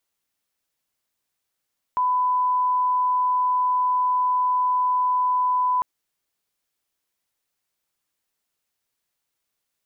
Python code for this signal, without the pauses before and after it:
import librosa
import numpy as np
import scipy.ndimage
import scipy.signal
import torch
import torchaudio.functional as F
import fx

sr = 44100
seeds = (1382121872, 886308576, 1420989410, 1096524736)

y = fx.lineup_tone(sr, length_s=3.85, level_db=-18.0)